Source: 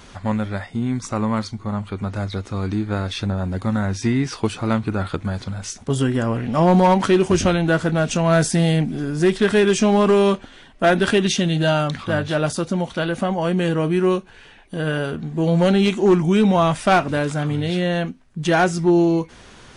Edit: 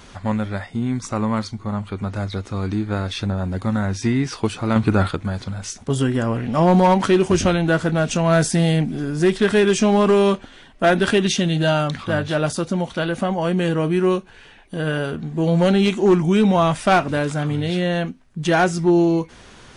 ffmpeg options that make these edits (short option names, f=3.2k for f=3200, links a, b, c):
-filter_complex "[0:a]asplit=3[a][b][c];[a]atrim=end=4.762[d];[b]atrim=start=4.758:end=5.112,asetpts=PTS-STARTPTS,volume=6dB[e];[c]atrim=start=5.108[f];[d][e]acrossfade=d=0.004:c1=hsin:c2=hsin[g];[g][f]acrossfade=d=0.004:c1=hsin:c2=hsin"